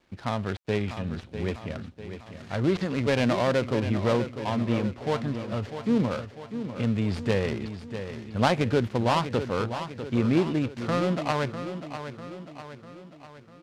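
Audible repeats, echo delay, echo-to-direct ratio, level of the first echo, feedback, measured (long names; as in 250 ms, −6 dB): 5, 648 ms, −8.5 dB, −10.0 dB, 52%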